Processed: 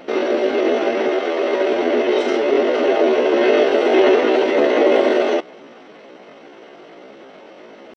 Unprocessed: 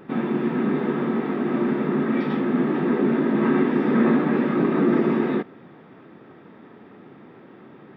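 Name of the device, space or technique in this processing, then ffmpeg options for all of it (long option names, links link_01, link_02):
chipmunk voice: -filter_complex "[0:a]asetrate=72056,aresample=44100,atempo=0.612027,asettb=1/sr,asplit=3[link_01][link_02][link_03];[link_01]atrim=end=1.084[link_04];[link_02]atrim=start=1.08:end=1.73,asetpts=PTS-STARTPTS,afade=type=in:duration=0.004:curve=qsin,afade=type=out:start_time=0.646:duration=0.004:curve=qsin,highpass=260[link_05];[link_03]atrim=start=1.726[link_06];[link_04][link_05]acrossfade=duration=0.004:curve1=hsin:curve2=qsin[link_07];[link_07][link_06]acrossfade=duration=0.004:curve1=qsin:curve2=hsin,volume=5.5dB"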